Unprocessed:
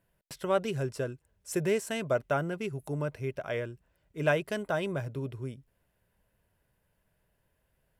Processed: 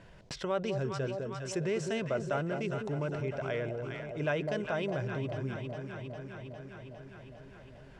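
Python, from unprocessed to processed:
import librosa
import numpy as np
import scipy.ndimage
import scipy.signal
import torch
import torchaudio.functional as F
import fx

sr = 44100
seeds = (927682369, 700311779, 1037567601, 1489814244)

p1 = scipy.signal.sosfilt(scipy.signal.butter(4, 6400.0, 'lowpass', fs=sr, output='sos'), x)
p2 = p1 + fx.echo_alternate(p1, sr, ms=203, hz=820.0, feedback_pct=73, wet_db=-7.5, dry=0)
p3 = fx.env_flatten(p2, sr, amount_pct=50)
y = p3 * librosa.db_to_amplitude(-6.5)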